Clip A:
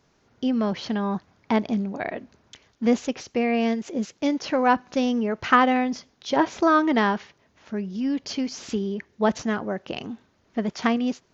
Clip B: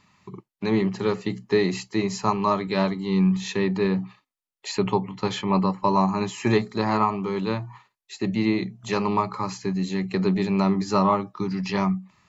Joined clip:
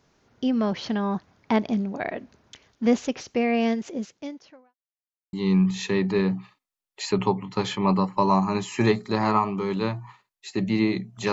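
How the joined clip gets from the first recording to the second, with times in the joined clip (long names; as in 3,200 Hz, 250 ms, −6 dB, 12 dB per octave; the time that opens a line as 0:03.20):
clip A
0:03.81–0:04.75: fade out quadratic
0:04.75–0:05.33: silence
0:05.33: continue with clip B from 0:02.99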